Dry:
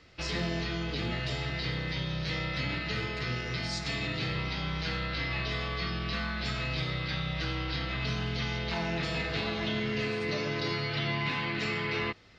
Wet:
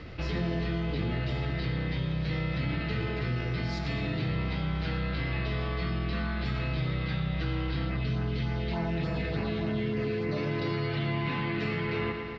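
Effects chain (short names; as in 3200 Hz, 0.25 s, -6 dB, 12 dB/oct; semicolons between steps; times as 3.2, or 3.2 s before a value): low shelf 470 Hz +7.5 dB; 7.86–10.37 LFO notch sine 3.4 Hz 830–3700 Hz; air absorption 190 m; feedback echo 0.115 s, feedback 59%, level -12 dB; fast leveller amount 50%; gain -4 dB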